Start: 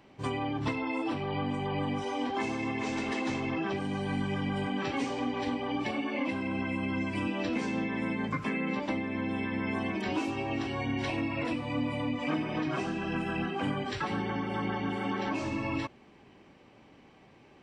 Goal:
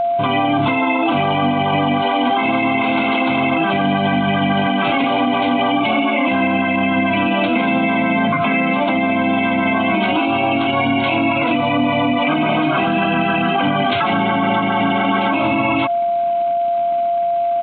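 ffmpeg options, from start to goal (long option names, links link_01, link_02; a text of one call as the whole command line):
ffmpeg -i in.wav -af "highpass=190,aresample=8000,aeval=exprs='sgn(val(0))*max(abs(val(0))-0.00106,0)':channel_layout=same,aresample=44100,aeval=exprs='val(0)+0.0126*sin(2*PI*690*n/s)':channel_layout=same,asuperstop=centerf=1800:order=8:qfactor=5.5,equalizer=frequency=410:width_type=o:width=0.57:gain=-11,alimiter=level_in=32.5dB:limit=-1dB:release=50:level=0:latency=1,volume=-7.5dB" out.wav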